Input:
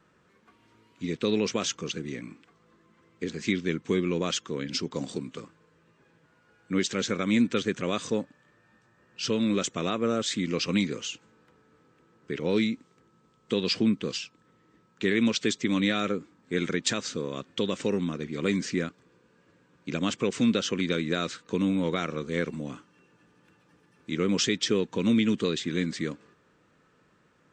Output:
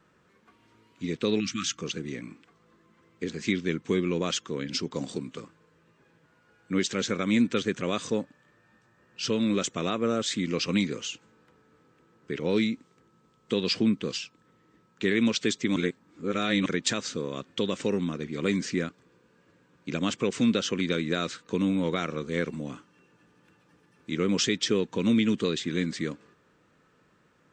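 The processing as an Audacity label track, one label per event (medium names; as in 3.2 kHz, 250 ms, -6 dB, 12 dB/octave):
1.400000	1.780000	spectral selection erased 340–1100 Hz
15.760000	16.660000	reverse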